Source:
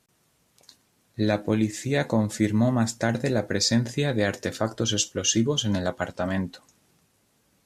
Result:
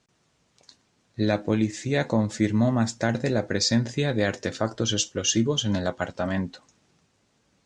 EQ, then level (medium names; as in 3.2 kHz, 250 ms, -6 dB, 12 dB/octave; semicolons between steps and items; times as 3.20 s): low-pass 7.3 kHz 24 dB/octave; 0.0 dB